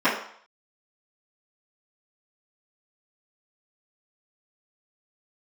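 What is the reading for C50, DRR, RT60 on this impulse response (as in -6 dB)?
5.5 dB, -16.5 dB, 0.60 s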